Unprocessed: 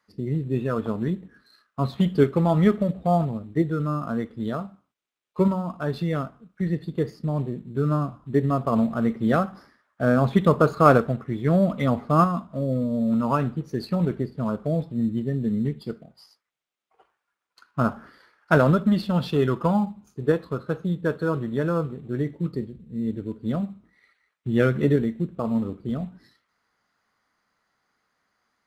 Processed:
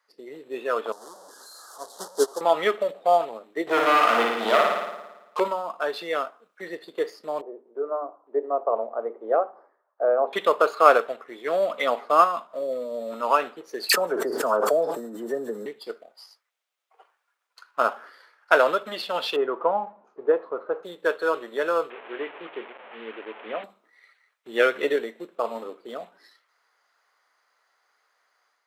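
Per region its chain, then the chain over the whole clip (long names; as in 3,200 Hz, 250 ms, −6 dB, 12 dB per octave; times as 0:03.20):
0:00.92–0:02.41: linear delta modulator 64 kbit/s, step −19 dBFS + Butterworth band-reject 2,400 Hz, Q 0.67 + expander for the loud parts 2.5 to 1, over −27 dBFS
0:03.67–0:05.40: leveller curve on the samples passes 3 + flutter between parallel walls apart 9.6 metres, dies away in 1.1 s
0:07.41–0:10.33: flat-topped band-pass 520 Hz, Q 0.91 + mains-hum notches 50/100/150/200/250/300/350/400 Hz
0:13.89–0:15.66: flat-topped bell 2,900 Hz −14.5 dB 1.3 octaves + all-pass dispersion lows, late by 51 ms, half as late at 1,900 Hz + envelope flattener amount 100%
0:19.36–0:20.83: mu-law and A-law mismatch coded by mu + low-pass filter 1,000 Hz
0:21.90–0:23.64: linear delta modulator 16 kbit/s, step −36 dBFS + low-shelf EQ 130 Hz −8.5 dB + mains-hum notches 50/100/150/200/250 Hz
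whole clip: high-pass filter 460 Hz 24 dB per octave; dynamic equaliser 2,800 Hz, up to +6 dB, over −46 dBFS, Q 1.5; automatic gain control gain up to 4.5 dB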